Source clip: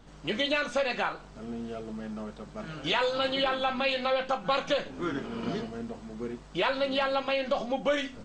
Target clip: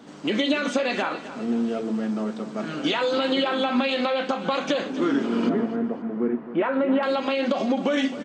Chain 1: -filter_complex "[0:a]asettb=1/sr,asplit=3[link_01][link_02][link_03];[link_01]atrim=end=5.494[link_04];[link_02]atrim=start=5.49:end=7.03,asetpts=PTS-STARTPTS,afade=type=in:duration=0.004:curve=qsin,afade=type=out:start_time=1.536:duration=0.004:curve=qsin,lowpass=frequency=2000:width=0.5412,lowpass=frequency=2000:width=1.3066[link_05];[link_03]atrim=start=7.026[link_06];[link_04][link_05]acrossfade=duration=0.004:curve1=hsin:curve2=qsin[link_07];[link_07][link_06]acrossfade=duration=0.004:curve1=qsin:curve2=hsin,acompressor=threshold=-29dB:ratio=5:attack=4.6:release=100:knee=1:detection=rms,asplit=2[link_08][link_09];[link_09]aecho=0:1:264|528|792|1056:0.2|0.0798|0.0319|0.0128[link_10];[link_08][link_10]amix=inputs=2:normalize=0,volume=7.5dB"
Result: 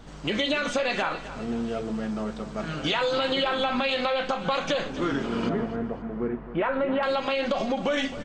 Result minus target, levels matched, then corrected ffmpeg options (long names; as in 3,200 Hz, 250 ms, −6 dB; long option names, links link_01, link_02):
250 Hz band −3.0 dB
-filter_complex "[0:a]asettb=1/sr,asplit=3[link_01][link_02][link_03];[link_01]atrim=end=5.494[link_04];[link_02]atrim=start=5.49:end=7.03,asetpts=PTS-STARTPTS,afade=type=in:duration=0.004:curve=qsin,afade=type=out:start_time=1.536:duration=0.004:curve=qsin,lowpass=frequency=2000:width=0.5412,lowpass=frequency=2000:width=1.3066[link_05];[link_03]atrim=start=7.026[link_06];[link_04][link_05]acrossfade=duration=0.004:curve1=hsin:curve2=qsin[link_07];[link_07][link_06]acrossfade=duration=0.004:curve1=qsin:curve2=hsin,acompressor=threshold=-29dB:ratio=5:attack=4.6:release=100:knee=1:detection=rms,highpass=frequency=250:width_type=q:width=2.2,asplit=2[link_08][link_09];[link_09]aecho=0:1:264|528|792|1056:0.2|0.0798|0.0319|0.0128[link_10];[link_08][link_10]amix=inputs=2:normalize=0,volume=7.5dB"